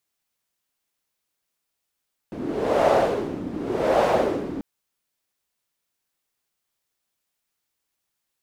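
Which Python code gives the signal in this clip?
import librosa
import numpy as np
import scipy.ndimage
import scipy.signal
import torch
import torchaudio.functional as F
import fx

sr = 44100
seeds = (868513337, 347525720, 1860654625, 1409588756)

y = fx.wind(sr, seeds[0], length_s=2.29, low_hz=270.0, high_hz=630.0, q=3.0, gusts=2, swing_db=13)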